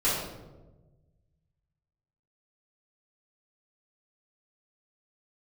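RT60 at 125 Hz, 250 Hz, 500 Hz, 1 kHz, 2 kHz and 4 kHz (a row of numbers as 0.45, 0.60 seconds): 2.1, 1.5, 1.4, 1.0, 0.70, 0.60 seconds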